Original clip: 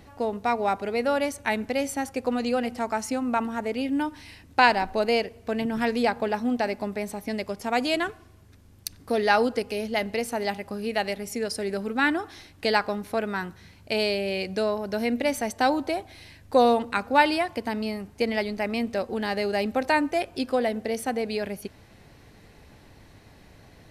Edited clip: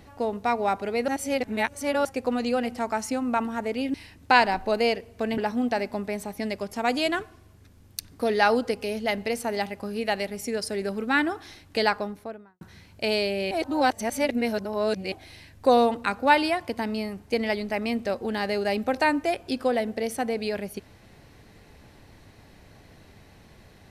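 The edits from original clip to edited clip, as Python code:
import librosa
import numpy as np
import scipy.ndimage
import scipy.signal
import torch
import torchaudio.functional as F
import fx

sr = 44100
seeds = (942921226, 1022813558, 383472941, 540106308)

y = fx.studio_fade_out(x, sr, start_s=12.69, length_s=0.8)
y = fx.edit(y, sr, fx.reverse_span(start_s=1.08, length_s=0.97),
    fx.cut(start_s=3.94, length_s=0.28),
    fx.cut(start_s=5.66, length_s=0.6),
    fx.reverse_span(start_s=14.39, length_s=1.61), tone=tone)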